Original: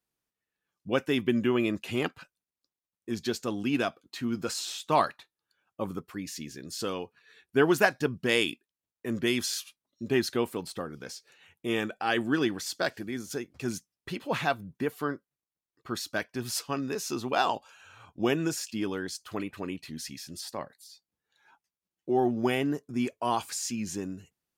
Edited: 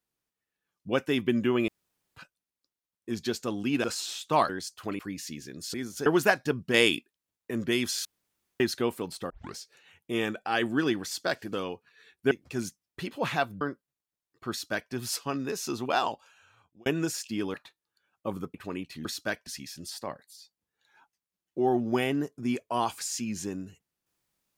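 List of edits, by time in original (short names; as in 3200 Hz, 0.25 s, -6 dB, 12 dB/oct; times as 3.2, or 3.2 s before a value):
1.68–2.16 room tone
3.84–4.43 cut
5.08–6.08 swap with 18.97–19.47
6.83–7.61 swap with 13.08–13.4
8.29–9.06 gain +3.5 dB
9.6–10.15 room tone
10.85 tape start 0.26 s
14.7–15.04 cut
15.93–16.35 copy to 19.98
17.33–18.29 fade out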